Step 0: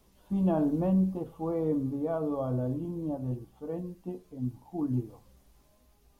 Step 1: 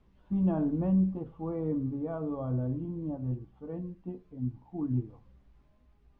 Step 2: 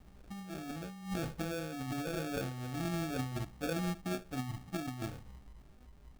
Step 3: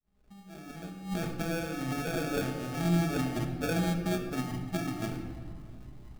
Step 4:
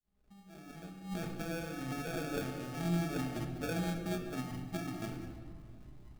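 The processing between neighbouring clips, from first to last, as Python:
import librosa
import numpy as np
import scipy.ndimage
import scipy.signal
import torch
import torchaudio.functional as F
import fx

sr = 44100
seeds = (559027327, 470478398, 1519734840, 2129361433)

y1 = scipy.signal.sosfilt(scipy.signal.butter(2, 1900.0, 'lowpass', fs=sr, output='sos'), x)
y1 = fx.peak_eq(y1, sr, hz=630.0, db=-8.0, octaves=2.2)
y1 = F.gain(torch.from_numpy(y1), 2.0).numpy()
y2 = fx.over_compress(y1, sr, threshold_db=-39.0, ratio=-1.0)
y2 = fx.sample_hold(y2, sr, seeds[0], rate_hz=1000.0, jitter_pct=0)
y3 = fx.fade_in_head(y2, sr, length_s=1.53)
y3 = fx.room_shoebox(y3, sr, seeds[1], volume_m3=3400.0, walls='mixed', distance_m=1.4)
y3 = F.gain(torch.from_numpy(y3), 4.0).numpy()
y4 = y3 + 10.0 ** (-13.0 / 20.0) * np.pad(y3, (int(196 * sr / 1000.0), 0))[:len(y3)]
y4 = F.gain(torch.from_numpy(y4), -6.0).numpy()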